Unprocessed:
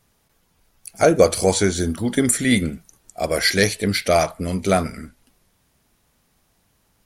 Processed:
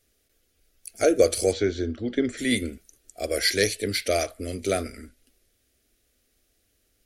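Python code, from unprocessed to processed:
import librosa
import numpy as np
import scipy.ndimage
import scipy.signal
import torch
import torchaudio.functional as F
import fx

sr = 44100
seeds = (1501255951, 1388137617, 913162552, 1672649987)

y = fx.gaussian_blur(x, sr, sigma=2.1, at=(1.51, 2.37), fade=0.02)
y = fx.fixed_phaser(y, sr, hz=390.0, stages=4)
y = y * librosa.db_to_amplitude(-3.0)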